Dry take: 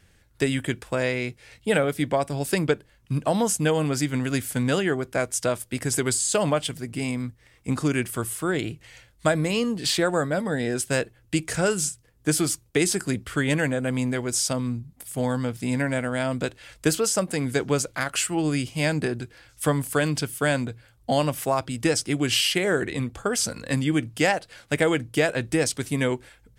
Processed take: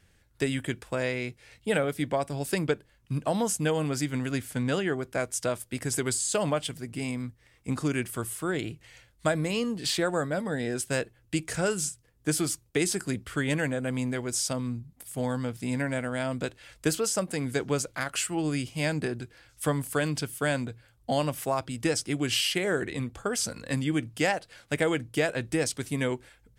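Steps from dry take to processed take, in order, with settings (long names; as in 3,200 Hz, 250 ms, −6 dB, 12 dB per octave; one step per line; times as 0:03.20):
0:04.30–0:04.95: high-shelf EQ 6,200 Hz → 9,600 Hz −7.5 dB
level −4.5 dB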